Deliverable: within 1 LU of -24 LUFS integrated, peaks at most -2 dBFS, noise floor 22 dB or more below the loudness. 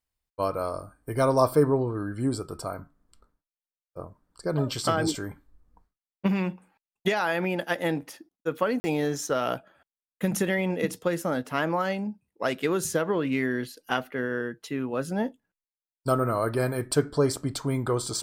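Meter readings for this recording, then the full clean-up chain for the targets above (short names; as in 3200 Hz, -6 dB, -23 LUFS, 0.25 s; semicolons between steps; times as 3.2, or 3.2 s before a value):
dropouts 1; longest dropout 40 ms; loudness -28.0 LUFS; peak -8.0 dBFS; loudness target -24.0 LUFS
-> interpolate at 8.8, 40 ms; gain +4 dB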